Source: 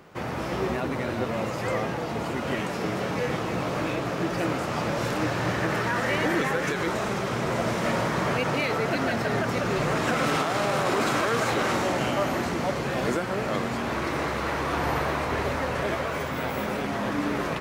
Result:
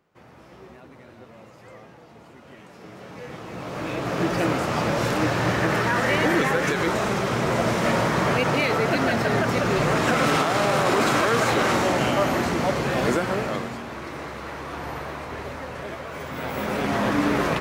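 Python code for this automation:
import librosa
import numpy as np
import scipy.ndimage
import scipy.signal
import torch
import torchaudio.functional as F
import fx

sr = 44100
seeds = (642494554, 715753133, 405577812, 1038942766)

y = fx.gain(x, sr, db=fx.line((2.55, -18.0), (3.52, -7.5), (4.2, 4.0), (13.31, 4.0), (13.87, -6.5), (16.04, -6.5), (16.93, 5.5)))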